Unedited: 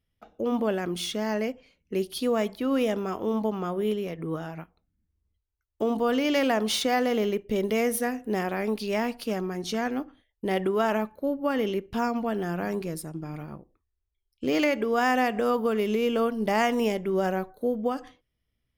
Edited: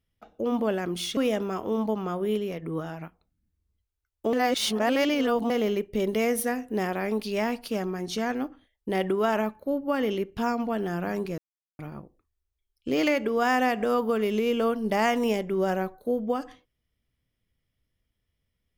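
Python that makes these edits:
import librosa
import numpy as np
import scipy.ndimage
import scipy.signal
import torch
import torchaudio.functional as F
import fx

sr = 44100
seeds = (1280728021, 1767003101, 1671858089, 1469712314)

y = fx.edit(x, sr, fx.cut(start_s=1.17, length_s=1.56),
    fx.reverse_span(start_s=5.89, length_s=1.17),
    fx.silence(start_s=12.94, length_s=0.41), tone=tone)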